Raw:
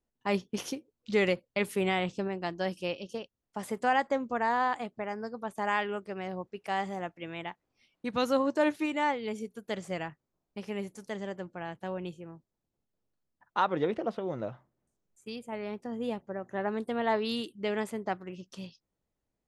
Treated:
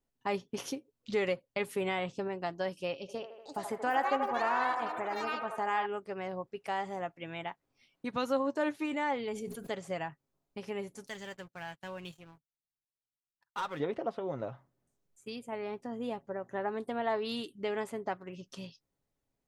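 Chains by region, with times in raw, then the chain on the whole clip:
0:02.96–0:05.86: delay with pitch and tempo change per echo 496 ms, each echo +7 semitones, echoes 2, each echo −6 dB + delay with a band-pass on its return 79 ms, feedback 62%, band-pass 960 Hz, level −5.5 dB
0:08.85–0:09.73: notch filter 5,700 Hz, Q 28 + level that may fall only so fast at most 46 dB per second
0:11.07–0:13.80: guitar amp tone stack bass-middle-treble 5-5-5 + leveller curve on the samples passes 3
whole clip: comb filter 7.3 ms, depth 33%; dynamic equaliser 850 Hz, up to +4 dB, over −41 dBFS, Q 0.81; downward compressor 1.5 to 1, threshold −40 dBFS

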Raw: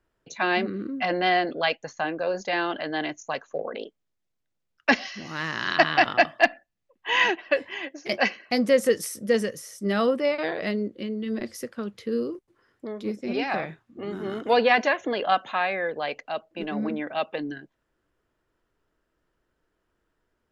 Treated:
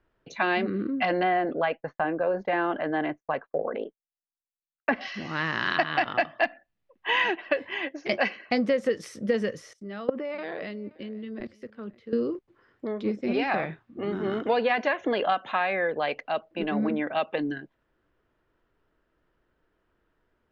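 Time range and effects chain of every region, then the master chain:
0:01.23–0:05.01: low-pass filter 1,700 Hz + downward expander −46 dBFS
0:09.73–0:12.13: output level in coarse steps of 19 dB + single-tap delay 524 ms −20.5 dB + multiband upward and downward expander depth 70%
whole clip: low-pass filter 3,500 Hz 12 dB per octave; downward compressor 6 to 1, threshold −24 dBFS; level +3 dB

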